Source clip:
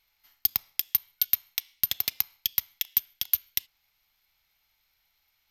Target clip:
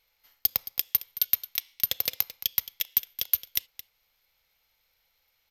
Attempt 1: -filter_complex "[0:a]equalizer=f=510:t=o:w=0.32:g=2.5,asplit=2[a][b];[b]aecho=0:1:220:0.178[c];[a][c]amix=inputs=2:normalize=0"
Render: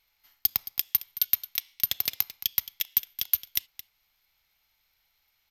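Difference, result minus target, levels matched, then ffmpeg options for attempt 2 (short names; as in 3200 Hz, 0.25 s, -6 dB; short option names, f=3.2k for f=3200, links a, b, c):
500 Hz band -6.5 dB
-filter_complex "[0:a]equalizer=f=510:t=o:w=0.32:g=14,asplit=2[a][b];[b]aecho=0:1:220:0.178[c];[a][c]amix=inputs=2:normalize=0"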